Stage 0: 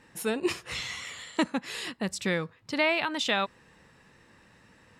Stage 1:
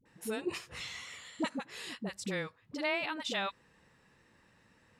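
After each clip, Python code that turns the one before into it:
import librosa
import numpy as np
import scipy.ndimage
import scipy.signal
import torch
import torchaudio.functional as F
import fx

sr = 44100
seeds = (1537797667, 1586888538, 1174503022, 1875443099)

y = fx.dispersion(x, sr, late='highs', ms=57.0, hz=510.0)
y = y * librosa.db_to_amplitude(-7.5)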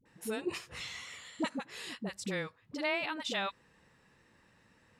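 y = x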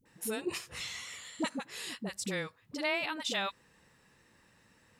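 y = fx.high_shelf(x, sr, hz=6000.0, db=9.5)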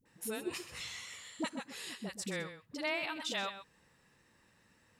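y = x + 10.0 ** (-11.5 / 20.0) * np.pad(x, (int(128 * sr / 1000.0), 0))[:len(x)]
y = y * librosa.db_to_amplitude(-3.5)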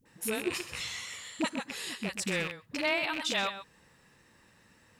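y = fx.rattle_buzz(x, sr, strikes_db=-52.0, level_db=-30.0)
y = y * librosa.db_to_amplitude(6.0)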